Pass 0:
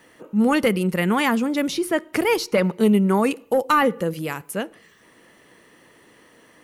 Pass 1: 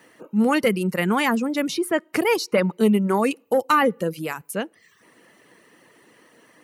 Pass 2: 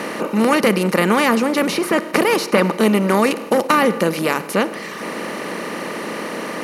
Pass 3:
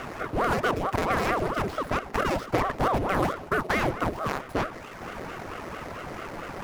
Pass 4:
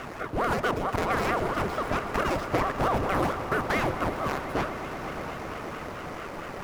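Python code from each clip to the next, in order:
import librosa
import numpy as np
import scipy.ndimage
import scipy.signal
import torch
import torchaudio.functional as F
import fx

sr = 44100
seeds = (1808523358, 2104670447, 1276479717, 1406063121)

y1 = fx.dereverb_blind(x, sr, rt60_s=0.55)
y1 = scipy.signal.sosfilt(scipy.signal.butter(2, 120.0, 'highpass', fs=sr, output='sos'), y1)
y1 = fx.notch(y1, sr, hz=3400.0, q=17.0)
y2 = fx.bin_compress(y1, sr, power=0.4)
y3 = scipy.signal.medfilt(y2, 15)
y3 = fx.ring_lfo(y3, sr, carrier_hz=530.0, swing_pct=85, hz=4.5)
y3 = y3 * 10.0 ** (-6.5 / 20.0)
y4 = fx.echo_swell(y3, sr, ms=121, loudest=5, wet_db=-16)
y4 = y4 * 10.0 ** (-1.5 / 20.0)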